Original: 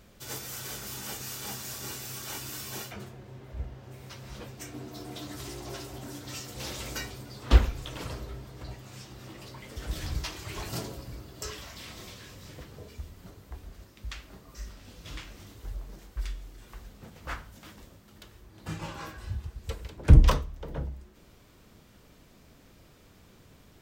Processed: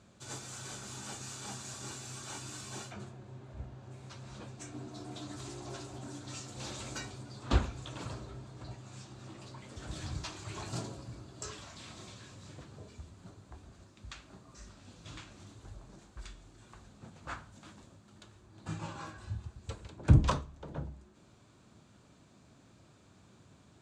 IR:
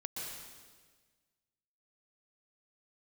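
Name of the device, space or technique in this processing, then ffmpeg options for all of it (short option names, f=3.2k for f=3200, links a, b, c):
car door speaker: -af "highpass=92,equalizer=f=110:t=q:w=4:g=4,equalizer=f=470:t=q:w=4:g=-6,equalizer=f=2k:t=q:w=4:g=-7,equalizer=f=3k:t=q:w=4:g=-5,equalizer=f=5.3k:t=q:w=4:g=-6,equalizer=f=7.5k:t=q:w=4:g=3,lowpass=f=8.1k:w=0.5412,lowpass=f=8.1k:w=1.3066,volume=-2.5dB"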